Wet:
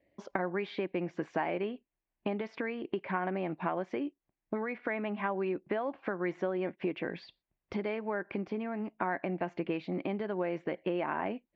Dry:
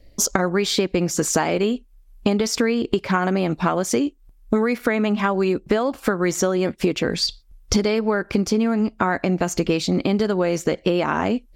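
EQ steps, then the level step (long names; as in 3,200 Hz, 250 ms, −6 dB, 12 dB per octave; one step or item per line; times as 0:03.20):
loudspeaker in its box 230–2,400 Hz, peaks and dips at 240 Hz −7 dB, 460 Hz −7 dB, 1,300 Hz −8 dB
−9.0 dB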